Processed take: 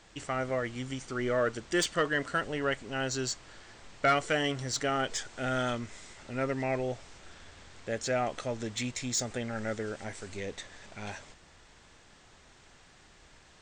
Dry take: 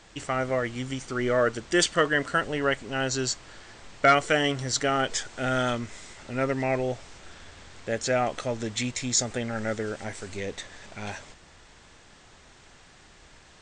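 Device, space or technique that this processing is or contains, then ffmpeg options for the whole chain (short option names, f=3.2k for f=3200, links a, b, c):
saturation between pre-emphasis and de-emphasis: -af "highshelf=f=2.8k:g=8.5,asoftclip=type=tanh:threshold=-11dB,highshelf=f=2.8k:g=-8.5,volume=-4.5dB"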